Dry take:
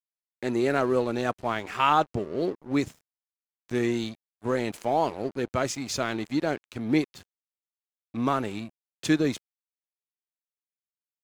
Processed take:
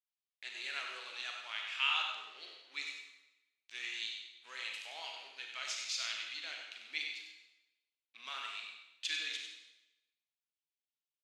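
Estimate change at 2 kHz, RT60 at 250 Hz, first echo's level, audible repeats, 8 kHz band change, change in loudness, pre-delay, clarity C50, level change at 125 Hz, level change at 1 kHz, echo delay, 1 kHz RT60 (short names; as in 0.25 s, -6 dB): -4.5 dB, 1.1 s, -7.5 dB, 1, -7.0 dB, -11.5 dB, 31 ms, 2.0 dB, under -40 dB, -19.0 dB, 96 ms, 0.95 s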